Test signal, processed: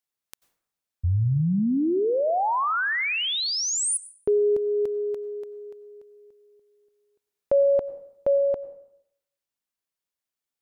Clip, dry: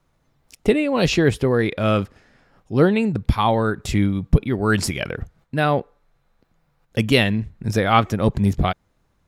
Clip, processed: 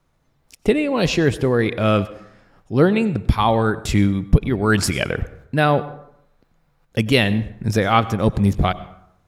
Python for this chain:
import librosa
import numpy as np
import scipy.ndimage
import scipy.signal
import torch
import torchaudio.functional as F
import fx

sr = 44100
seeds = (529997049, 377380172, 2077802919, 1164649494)

y = fx.rider(x, sr, range_db=4, speed_s=0.5)
y = fx.rev_plate(y, sr, seeds[0], rt60_s=0.75, hf_ratio=0.6, predelay_ms=80, drr_db=16.5)
y = F.gain(torch.from_numpy(y), 1.5).numpy()